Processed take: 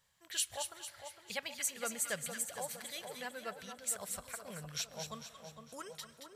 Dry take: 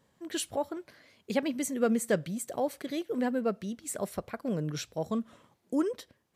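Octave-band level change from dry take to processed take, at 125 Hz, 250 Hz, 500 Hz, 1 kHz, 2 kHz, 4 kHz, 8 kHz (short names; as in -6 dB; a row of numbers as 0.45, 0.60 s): -13.5, -21.5, -14.5, -7.5, -2.0, +1.0, +2.5 dB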